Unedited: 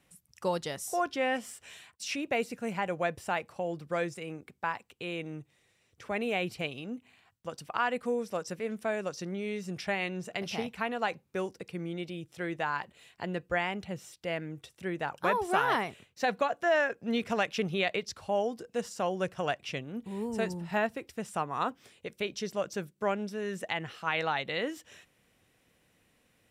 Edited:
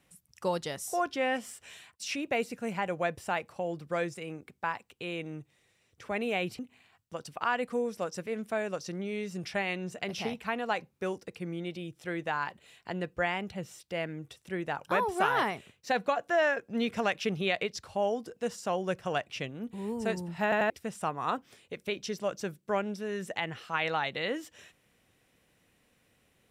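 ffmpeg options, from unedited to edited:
-filter_complex "[0:a]asplit=5[a][b][c][d][e];[a]atrim=end=6.592[f];[b]atrim=start=6.918:end=20.852[g];[c]atrim=start=20.758:end=20.852[h];[d]atrim=start=20.758:end=20.852[i];[e]atrim=start=21.028[j];[f][g]acrossfade=d=0.004:c1=hsin:c2=hsin[k];[k][h]acrossfade=d=0.004:c1=hsin:c2=hsin[l];[l][i]acrossfade=d=0.004:c1=hsin:c2=hsin[m];[m][j]acrossfade=d=0.004:c1=hsin:c2=hsin"

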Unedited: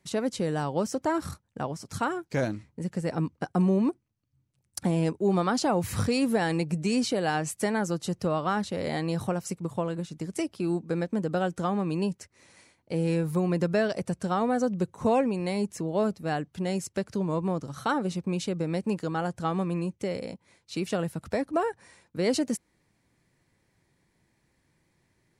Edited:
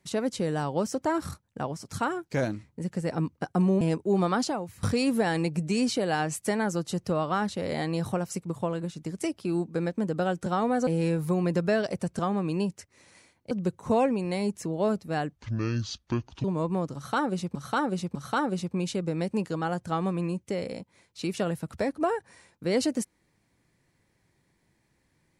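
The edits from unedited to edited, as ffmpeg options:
-filter_complex "[0:a]asplit=11[a][b][c][d][e][f][g][h][i][j][k];[a]atrim=end=3.812[l];[b]atrim=start=4.958:end=5.98,asetpts=PTS-STARTPTS,afade=t=out:st=0.602:d=0.42:c=qua:silence=0.11885[m];[c]atrim=start=5.98:end=11.612,asetpts=PTS-STARTPTS,afade=t=in:d=0.004:c=hsin:silence=0.11885[n];[d]atrim=start=14.248:end=14.662[o];[e]atrim=start=12.928:end=14.252[p];[f]atrim=start=11.608:end=12.932[q];[g]atrim=start=14.658:end=16.514[r];[h]atrim=start=16.51:end=17.17,asetpts=PTS-STARTPTS,asetrate=26901,aresample=44100[s];[i]atrim=start=17.166:end=18.282[t];[j]atrim=start=17.678:end=18.282[u];[k]atrim=start=17.678[v];[m][n]concat=n=2:v=0:a=1[w];[l][w]acrossfade=d=0.004:c1=hsin:c2=hsin[x];[x][o]acrossfade=d=0.004:c1=hsin:c2=hsin[y];[y][p]acrossfade=d=0.004:c1=hsin:c2=hsin[z];[z][q]acrossfade=d=0.004:c1=hsin:c2=hsin[aa];[aa][r]acrossfade=d=0.004:c1=hsin:c2=hsin[ab];[ab][s]acrossfade=d=0.004:c1=hsin:c2=hsin[ac];[ac][t]acrossfade=d=0.004:c1=hsin:c2=hsin[ad];[ad][u]acrossfade=d=0.004:c1=hsin:c2=hsin[ae];[ae][v]acrossfade=d=0.004:c1=hsin:c2=hsin"

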